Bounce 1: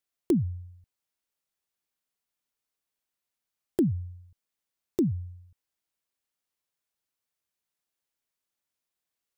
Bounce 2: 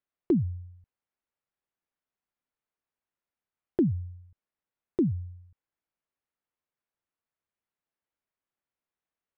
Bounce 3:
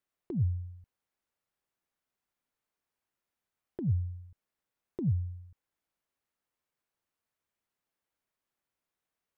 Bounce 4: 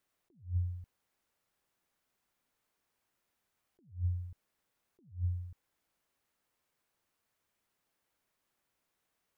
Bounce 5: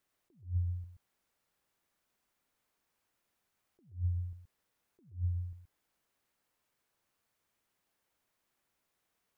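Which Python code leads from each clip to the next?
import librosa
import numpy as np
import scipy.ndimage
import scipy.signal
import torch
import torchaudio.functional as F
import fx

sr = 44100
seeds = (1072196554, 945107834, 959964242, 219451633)

y1 = scipy.signal.sosfilt(scipy.signal.butter(2, 2000.0, 'lowpass', fs=sr, output='sos'), x)
y2 = fx.over_compress(y1, sr, threshold_db=-27.0, ratio=-0.5)
y3 = fx.attack_slew(y2, sr, db_per_s=200.0)
y3 = y3 * librosa.db_to_amplitude(6.5)
y4 = y3 + 10.0 ** (-8.5 / 20.0) * np.pad(y3, (int(126 * sr / 1000.0), 0))[:len(y3)]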